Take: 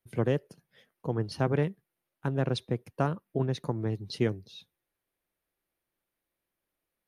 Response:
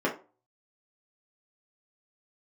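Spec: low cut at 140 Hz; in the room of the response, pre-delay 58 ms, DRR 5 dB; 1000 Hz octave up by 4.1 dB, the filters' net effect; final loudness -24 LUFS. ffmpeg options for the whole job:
-filter_complex "[0:a]highpass=140,equalizer=f=1k:t=o:g=5.5,asplit=2[a][b];[1:a]atrim=start_sample=2205,adelay=58[c];[b][c]afir=irnorm=-1:irlink=0,volume=-16.5dB[d];[a][d]amix=inputs=2:normalize=0,volume=5.5dB"

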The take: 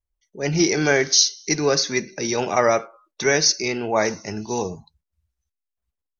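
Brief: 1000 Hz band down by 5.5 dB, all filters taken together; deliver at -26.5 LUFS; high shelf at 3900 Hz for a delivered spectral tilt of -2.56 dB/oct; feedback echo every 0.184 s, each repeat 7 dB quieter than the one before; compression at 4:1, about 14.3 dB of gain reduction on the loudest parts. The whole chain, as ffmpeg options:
-af "equalizer=f=1k:t=o:g=-8.5,highshelf=f=3.9k:g=7,acompressor=threshold=-25dB:ratio=4,aecho=1:1:184|368|552|736|920:0.447|0.201|0.0905|0.0407|0.0183,volume=0.5dB"

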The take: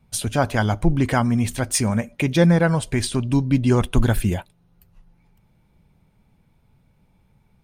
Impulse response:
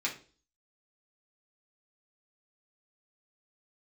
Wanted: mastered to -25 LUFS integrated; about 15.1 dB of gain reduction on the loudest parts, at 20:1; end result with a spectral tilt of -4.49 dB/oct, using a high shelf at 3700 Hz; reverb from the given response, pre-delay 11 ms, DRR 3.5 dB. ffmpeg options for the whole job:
-filter_complex "[0:a]highshelf=f=3.7k:g=5.5,acompressor=threshold=-25dB:ratio=20,asplit=2[a][b];[1:a]atrim=start_sample=2205,adelay=11[c];[b][c]afir=irnorm=-1:irlink=0,volume=-9dB[d];[a][d]amix=inputs=2:normalize=0,volume=4.5dB"

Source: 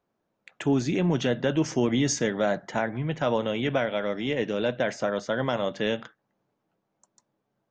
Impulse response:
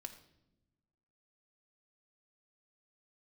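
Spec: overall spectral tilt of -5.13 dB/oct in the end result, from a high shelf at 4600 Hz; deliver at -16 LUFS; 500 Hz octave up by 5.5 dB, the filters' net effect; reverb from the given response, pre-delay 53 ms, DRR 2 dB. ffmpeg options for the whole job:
-filter_complex "[0:a]equalizer=f=500:t=o:g=6.5,highshelf=f=4.6k:g=3,asplit=2[a][b];[1:a]atrim=start_sample=2205,adelay=53[c];[b][c]afir=irnorm=-1:irlink=0,volume=2.5dB[d];[a][d]amix=inputs=2:normalize=0,volume=5.5dB"

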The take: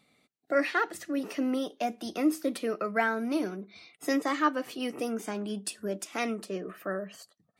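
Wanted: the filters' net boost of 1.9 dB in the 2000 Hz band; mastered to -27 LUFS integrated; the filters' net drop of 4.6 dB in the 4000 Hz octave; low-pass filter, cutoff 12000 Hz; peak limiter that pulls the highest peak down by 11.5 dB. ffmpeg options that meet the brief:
-af "lowpass=12k,equalizer=f=2k:t=o:g=4,equalizer=f=4k:t=o:g=-8,volume=6.5dB,alimiter=limit=-15.5dB:level=0:latency=1"

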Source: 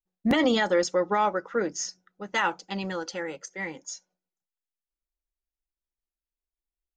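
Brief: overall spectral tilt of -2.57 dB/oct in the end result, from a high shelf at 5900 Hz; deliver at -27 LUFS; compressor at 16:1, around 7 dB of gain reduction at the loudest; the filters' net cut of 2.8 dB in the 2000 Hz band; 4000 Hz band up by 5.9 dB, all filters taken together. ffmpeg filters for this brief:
-af "equalizer=f=2k:t=o:g=-5.5,equalizer=f=4k:t=o:g=8,highshelf=f=5.9k:g=5.5,acompressor=threshold=-25dB:ratio=16,volume=4.5dB"

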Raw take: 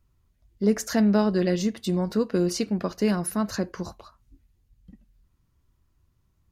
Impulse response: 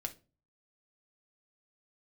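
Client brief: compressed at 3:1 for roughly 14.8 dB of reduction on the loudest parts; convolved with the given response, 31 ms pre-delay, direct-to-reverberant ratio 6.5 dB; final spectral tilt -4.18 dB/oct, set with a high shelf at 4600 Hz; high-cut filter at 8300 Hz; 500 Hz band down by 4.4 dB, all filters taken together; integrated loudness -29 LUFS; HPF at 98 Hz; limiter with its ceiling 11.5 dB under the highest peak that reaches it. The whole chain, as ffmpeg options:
-filter_complex "[0:a]highpass=98,lowpass=8.3k,equalizer=f=500:t=o:g=-6,highshelf=f=4.6k:g=7.5,acompressor=threshold=-39dB:ratio=3,alimiter=level_in=12.5dB:limit=-24dB:level=0:latency=1,volume=-12.5dB,asplit=2[a][b];[1:a]atrim=start_sample=2205,adelay=31[c];[b][c]afir=irnorm=-1:irlink=0,volume=-5.5dB[d];[a][d]amix=inputs=2:normalize=0,volume=16dB"

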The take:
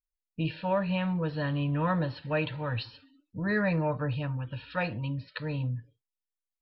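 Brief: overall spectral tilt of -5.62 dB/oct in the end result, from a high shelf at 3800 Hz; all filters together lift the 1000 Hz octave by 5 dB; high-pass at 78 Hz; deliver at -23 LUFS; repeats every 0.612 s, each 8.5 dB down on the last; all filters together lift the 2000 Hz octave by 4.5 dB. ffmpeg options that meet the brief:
-af "highpass=78,equalizer=f=1k:t=o:g=5,equalizer=f=2k:t=o:g=6,highshelf=f=3.8k:g=-8.5,aecho=1:1:612|1224|1836|2448:0.376|0.143|0.0543|0.0206,volume=6.5dB"

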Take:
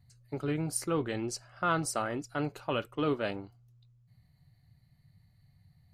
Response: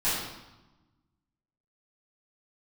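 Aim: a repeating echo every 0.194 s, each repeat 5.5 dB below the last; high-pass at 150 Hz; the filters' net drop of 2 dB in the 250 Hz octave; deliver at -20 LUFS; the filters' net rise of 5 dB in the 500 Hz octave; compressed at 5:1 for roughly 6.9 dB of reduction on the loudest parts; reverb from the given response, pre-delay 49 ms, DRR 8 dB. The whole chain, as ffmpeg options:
-filter_complex "[0:a]highpass=150,equalizer=f=250:t=o:g=-5.5,equalizer=f=500:t=o:g=7.5,acompressor=threshold=-30dB:ratio=5,aecho=1:1:194|388|582|776|970|1164|1358:0.531|0.281|0.149|0.079|0.0419|0.0222|0.0118,asplit=2[a][b];[1:a]atrim=start_sample=2205,adelay=49[c];[b][c]afir=irnorm=-1:irlink=0,volume=-19.5dB[d];[a][d]amix=inputs=2:normalize=0,volume=14.5dB"

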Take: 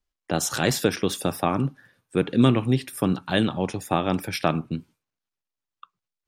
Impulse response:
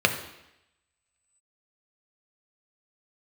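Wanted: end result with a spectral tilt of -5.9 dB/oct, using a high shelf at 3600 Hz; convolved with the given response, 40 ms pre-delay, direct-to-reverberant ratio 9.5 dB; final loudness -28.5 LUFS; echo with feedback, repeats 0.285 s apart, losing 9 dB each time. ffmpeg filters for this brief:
-filter_complex "[0:a]highshelf=f=3.6k:g=-7.5,aecho=1:1:285|570|855|1140:0.355|0.124|0.0435|0.0152,asplit=2[a][b];[1:a]atrim=start_sample=2205,adelay=40[c];[b][c]afir=irnorm=-1:irlink=0,volume=-26dB[d];[a][d]amix=inputs=2:normalize=0,volume=-4dB"

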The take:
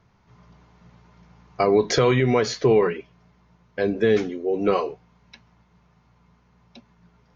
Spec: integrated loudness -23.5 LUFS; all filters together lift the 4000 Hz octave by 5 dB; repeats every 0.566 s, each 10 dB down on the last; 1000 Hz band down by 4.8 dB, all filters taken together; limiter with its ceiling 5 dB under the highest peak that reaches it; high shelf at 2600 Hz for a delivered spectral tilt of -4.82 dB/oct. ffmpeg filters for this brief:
-af "equalizer=f=1k:t=o:g=-7.5,highshelf=f=2.6k:g=3.5,equalizer=f=4k:t=o:g=3.5,alimiter=limit=-13dB:level=0:latency=1,aecho=1:1:566|1132|1698|2264:0.316|0.101|0.0324|0.0104,volume=1.5dB"

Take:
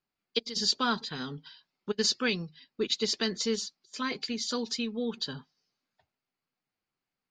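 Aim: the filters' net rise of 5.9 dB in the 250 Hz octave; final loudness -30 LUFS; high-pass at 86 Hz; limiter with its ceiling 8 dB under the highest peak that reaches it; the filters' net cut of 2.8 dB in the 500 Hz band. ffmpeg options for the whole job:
-af "highpass=86,equalizer=f=250:t=o:g=7.5,equalizer=f=500:t=o:g=-5.5,volume=2.5dB,alimiter=limit=-19.5dB:level=0:latency=1"

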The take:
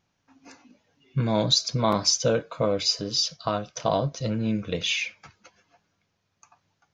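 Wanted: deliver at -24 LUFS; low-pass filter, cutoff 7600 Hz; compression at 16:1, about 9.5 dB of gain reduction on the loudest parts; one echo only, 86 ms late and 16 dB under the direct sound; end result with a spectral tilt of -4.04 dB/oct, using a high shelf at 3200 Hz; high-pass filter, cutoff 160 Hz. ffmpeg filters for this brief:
-af "highpass=160,lowpass=7.6k,highshelf=f=3.2k:g=-7.5,acompressor=threshold=-28dB:ratio=16,aecho=1:1:86:0.158,volume=9.5dB"

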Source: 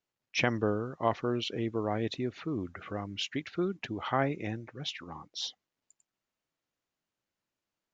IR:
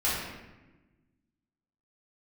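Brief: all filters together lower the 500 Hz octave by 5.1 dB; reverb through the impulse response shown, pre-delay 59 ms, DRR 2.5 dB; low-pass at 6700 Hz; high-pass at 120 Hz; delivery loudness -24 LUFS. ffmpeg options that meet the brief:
-filter_complex "[0:a]highpass=120,lowpass=6.7k,equalizer=f=500:t=o:g=-7,asplit=2[a][b];[1:a]atrim=start_sample=2205,adelay=59[c];[b][c]afir=irnorm=-1:irlink=0,volume=-13.5dB[d];[a][d]amix=inputs=2:normalize=0,volume=10dB"

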